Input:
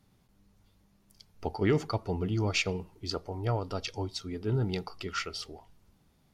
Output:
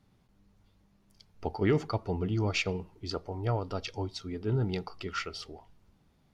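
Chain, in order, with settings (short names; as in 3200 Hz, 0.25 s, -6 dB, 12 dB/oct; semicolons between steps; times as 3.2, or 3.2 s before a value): high shelf 7000 Hz -10.5 dB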